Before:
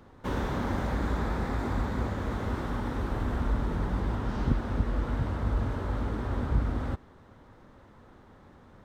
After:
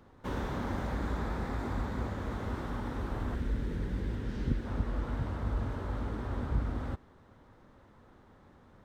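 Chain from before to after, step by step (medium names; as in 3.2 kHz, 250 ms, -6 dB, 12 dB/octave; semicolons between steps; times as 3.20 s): 3.35–4.66 s: high-order bell 910 Hz -10 dB 1.3 oct; trim -4.5 dB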